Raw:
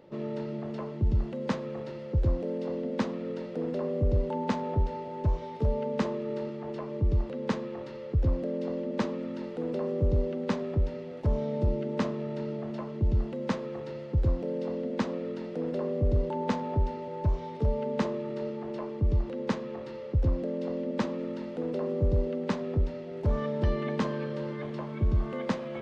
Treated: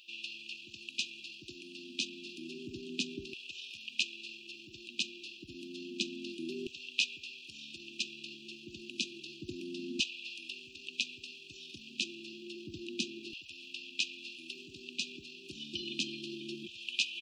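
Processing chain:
tempo change 1.5×
auto-filter high-pass saw down 0.3 Hz 700–2,700 Hz
linear-phase brick-wall band-stop 380–2,400 Hz
level +11.5 dB

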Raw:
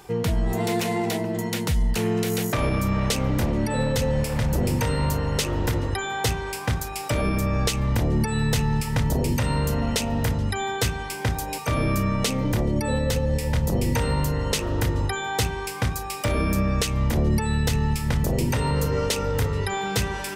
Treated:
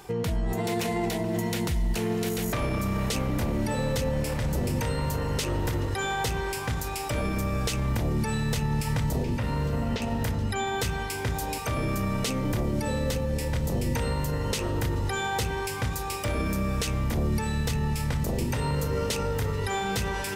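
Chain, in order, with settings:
brickwall limiter −20 dBFS, peak gain reduction 6.5 dB
0:09.18–0:10.02: high-frequency loss of the air 190 metres
feedback delay with all-pass diffusion 642 ms, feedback 57%, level −14 dB

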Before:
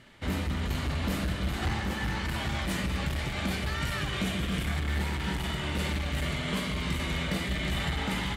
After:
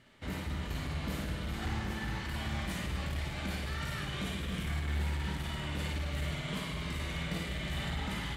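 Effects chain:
flutter between parallel walls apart 9.4 metres, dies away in 0.58 s
level −7.5 dB

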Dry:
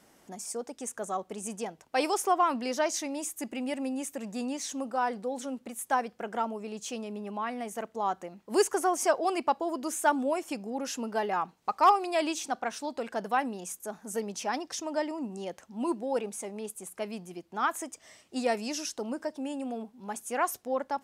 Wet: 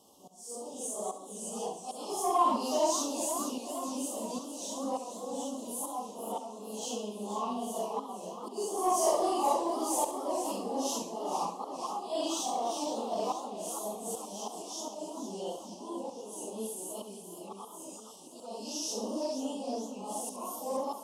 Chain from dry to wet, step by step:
random phases in long frames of 200 ms
volume swells 498 ms
elliptic band-stop filter 1,100–3,000 Hz, stop band 40 dB
low-shelf EQ 180 Hz −11 dB
in parallel at −9 dB: soft clipping −29.5 dBFS, distortion −11 dB
on the sum: feedback echo with a high-pass in the loop 68 ms, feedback 49%, level −10.5 dB
feedback echo with a swinging delay time 470 ms, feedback 68%, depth 184 cents, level −10 dB

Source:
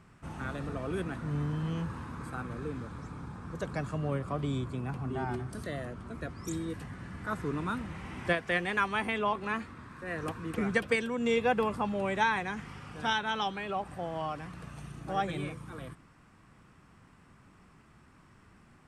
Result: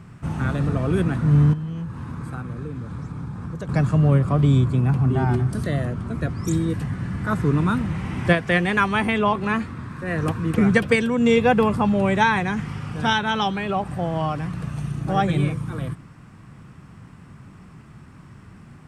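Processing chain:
parametric band 130 Hz +10 dB 1.7 octaves
0:01.53–0:03.69: downward compressor 5 to 1, threshold −37 dBFS, peak gain reduction 13.5 dB
level +8.5 dB

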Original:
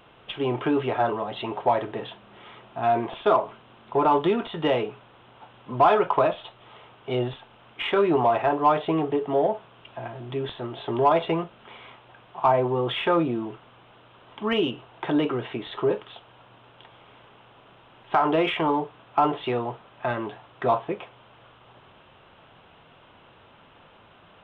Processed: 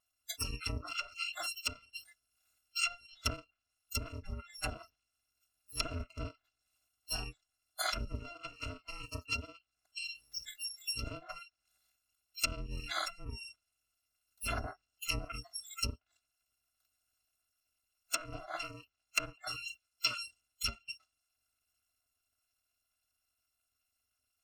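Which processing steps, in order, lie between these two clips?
samples in bit-reversed order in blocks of 256 samples
noise reduction from a noise print of the clip's start 30 dB
treble cut that deepens with the level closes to 550 Hz, closed at −18.5 dBFS
level +1 dB

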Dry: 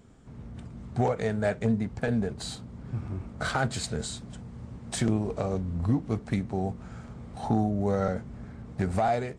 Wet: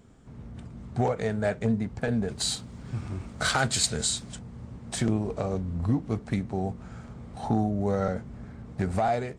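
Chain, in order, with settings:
0:02.28–0:04.39: high-shelf EQ 2,100 Hz +11.5 dB

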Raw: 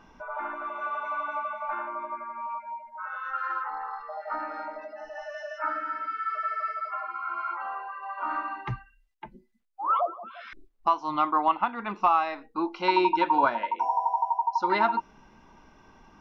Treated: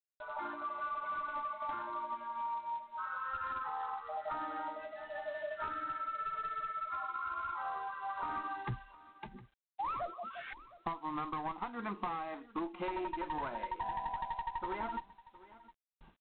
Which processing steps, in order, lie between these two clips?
asymmetric clip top −29 dBFS, bottom −17.5 dBFS
noise gate with hold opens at −43 dBFS
noise reduction from a noise print of the clip's start 7 dB
downward compressor 10 to 1, threshold −34 dBFS, peak gain reduction 12.5 dB
treble cut that deepens with the level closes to 1,600 Hz, closed at −38 dBFS
single-tap delay 712 ms −19 dB
G.726 24 kbit/s 8,000 Hz

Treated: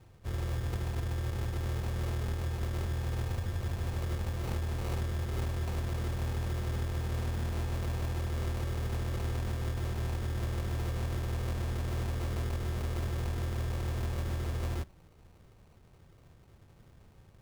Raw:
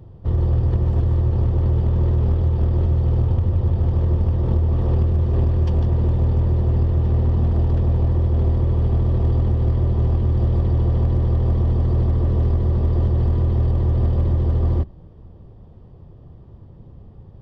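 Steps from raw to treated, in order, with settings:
tilt shelving filter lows −8 dB, about 780 Hz
decimation without filtering 26×
level −8 dB

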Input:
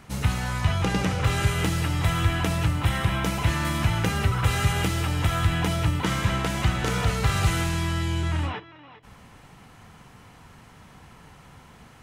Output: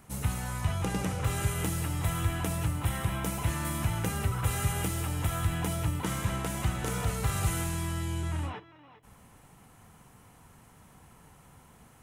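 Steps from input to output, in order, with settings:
drawn EQ curve 930 Hz 0 dB, 1,700 Hz −3 dB, 4,700 Hz −4 dB, 9,600 Hz +9 dB
level −6.5 dB

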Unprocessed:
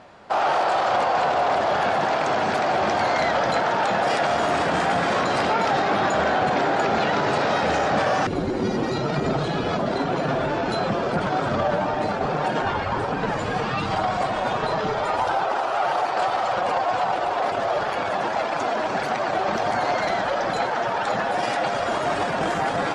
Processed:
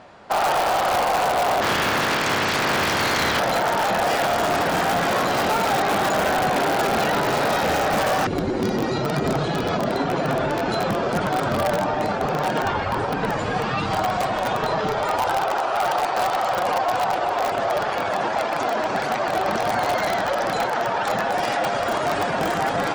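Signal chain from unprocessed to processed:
0:01.61–0:03.39: ceiling on every frequency bin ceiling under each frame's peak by 18 dB
in parallel at −4 dB: wrap-around overflow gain 14.5 dB
on the sum: level −3 dB

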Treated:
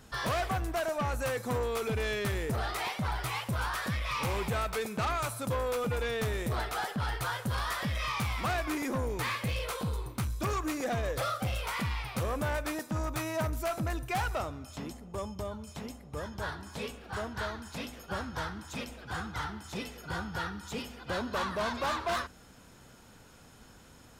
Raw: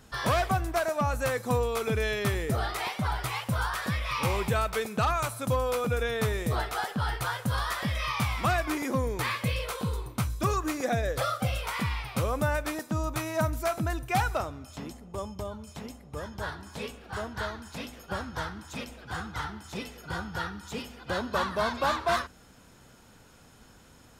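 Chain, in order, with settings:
soft clipping −27 dBFS, distortion −11 dB

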